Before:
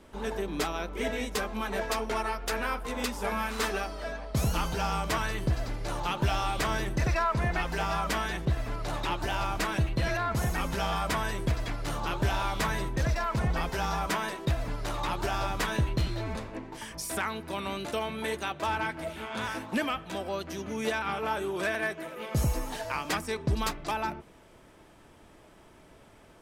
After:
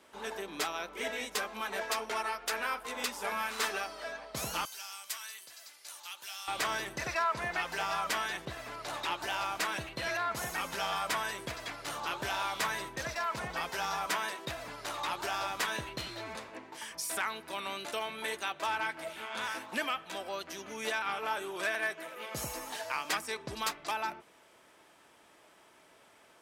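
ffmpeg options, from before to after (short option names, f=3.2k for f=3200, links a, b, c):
-filter_complex "[0:a]asettb=1/sr,asplit=3[a][b][c];[a]atrim=end=4.654[d];[b]atrim=start=4.65:end=6.48,asetpts=PTS-STARTPTS,afade=t=in:d=0.004:c=qsin,afade=t=out:st=1.826:d=0.004:c=qsin,aderivative[e];[c]atrim=start=6.476[f];[d][e]acrossfade=d=0.004:c1=hsin:c2=qsin[g];[g][f]acrossfade=d=0.004:c1=qsin:c2=hsin,highpass=f=930:p=1"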